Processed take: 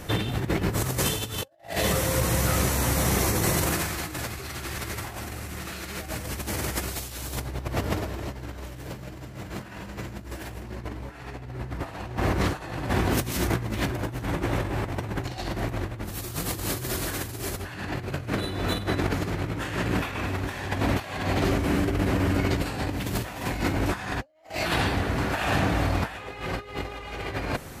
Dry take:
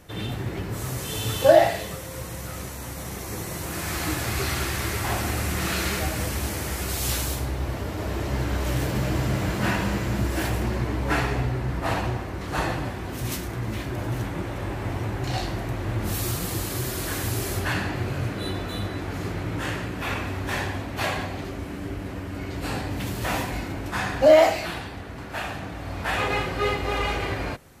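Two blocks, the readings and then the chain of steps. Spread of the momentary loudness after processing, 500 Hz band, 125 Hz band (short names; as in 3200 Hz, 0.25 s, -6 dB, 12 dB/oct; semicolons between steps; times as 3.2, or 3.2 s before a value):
13 LU, -6.0 dB, -1.0 dB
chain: negative-ratio compressor -33 dBFS, ratio -0.5; gain +4.5 dB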